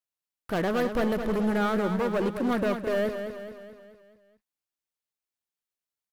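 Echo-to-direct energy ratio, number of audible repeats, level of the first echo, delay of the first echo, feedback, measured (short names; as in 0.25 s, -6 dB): -6.5 dB, 5, -8.0 dB, 0.214 s, 52%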